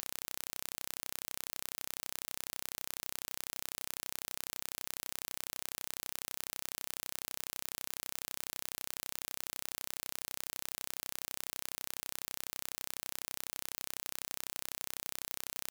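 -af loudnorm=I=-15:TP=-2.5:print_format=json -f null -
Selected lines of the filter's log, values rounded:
"input_i" : "-40.2",
"input_tp" : "-11.7",
"input_lra" : "0.0",
"input_thresh" : "-50.2",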